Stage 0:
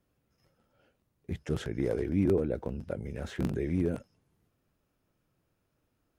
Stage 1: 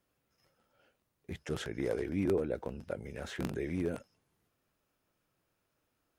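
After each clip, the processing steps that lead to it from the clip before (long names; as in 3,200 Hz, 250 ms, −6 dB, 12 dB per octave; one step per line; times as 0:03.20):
low-shelf EQ 380 Hz −10 dB
level +1.5 dB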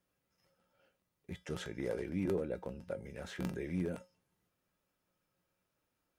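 tuned comb filter 180 Hz, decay 0.23 s, harmonics odd, mix 70%
level +5 dB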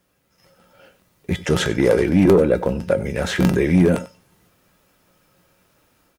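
automatic gain control gain up to 7 dB
in parallel at −5 dB: sine wavefolder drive 5 dB, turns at −16 dBFS
on the sum: single-tap delay 95 ms −17.5 dB
level +7.5 dB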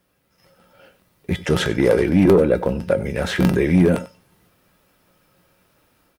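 parametric band 6,800 Hz −5 dB 0.47 octaves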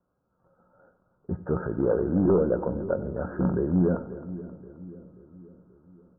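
Butterworth low-pass 1,500 Hz 96 dB per octave
echo with a time of its own for lows and highs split 470 Hz, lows 533 ms, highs 265 ms, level −14.5 dB
on a send at −17.5 dB: convolution reverb RT60 1.1 s, pre-delay 4 ms
on the sum: level −8 dB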